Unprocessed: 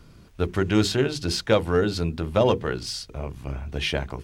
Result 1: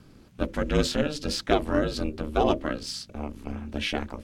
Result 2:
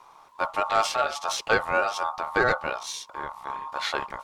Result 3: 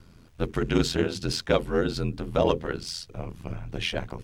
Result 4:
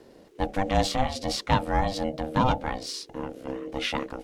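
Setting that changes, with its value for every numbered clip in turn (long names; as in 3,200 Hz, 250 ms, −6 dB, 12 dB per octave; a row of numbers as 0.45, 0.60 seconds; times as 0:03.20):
ring modulation, frequency: 150, 1,000, 42, 390 Hertz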